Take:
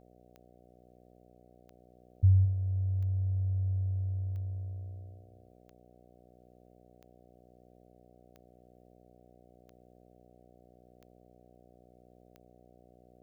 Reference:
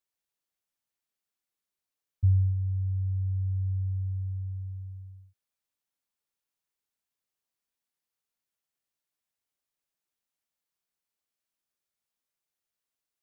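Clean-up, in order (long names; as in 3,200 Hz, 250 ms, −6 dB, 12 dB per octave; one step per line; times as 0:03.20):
click removal
hum removal 60.9 Hz, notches 12
echo removal 217 ms −12.5 dB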